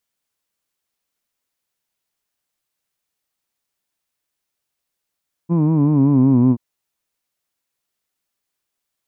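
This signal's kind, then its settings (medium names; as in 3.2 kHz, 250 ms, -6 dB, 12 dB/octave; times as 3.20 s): formant vowel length 1.08 s, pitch 165 Hz, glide -5.5 st, F1 260 Hz, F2 1 kHz, F3 2.4 kHz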